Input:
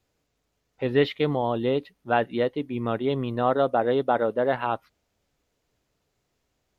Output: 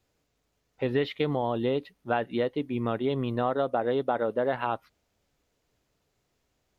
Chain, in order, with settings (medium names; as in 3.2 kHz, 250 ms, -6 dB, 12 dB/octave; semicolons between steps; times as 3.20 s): compression 4:1, threshold -23 dBFS, peak gain reduction 7.5 dB